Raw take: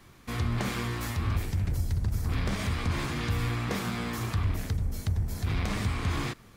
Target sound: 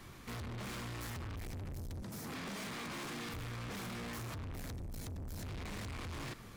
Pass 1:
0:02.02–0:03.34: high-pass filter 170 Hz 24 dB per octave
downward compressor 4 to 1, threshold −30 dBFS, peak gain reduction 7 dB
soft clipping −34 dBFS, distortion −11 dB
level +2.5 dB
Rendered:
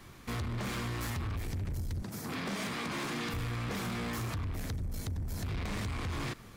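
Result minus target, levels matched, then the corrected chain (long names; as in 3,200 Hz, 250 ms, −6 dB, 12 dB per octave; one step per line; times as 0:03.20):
soft clipping: distortion −6 dB
0:02.02–0:03.34: high-pass filter 170 Hz 24 dB per octave
downward compressor 4 to 1, threshold −30 dBFS, peak gain reduction 7 dB
soft clipping −44 dBFS, distortion −5 dB
level +2.5 dB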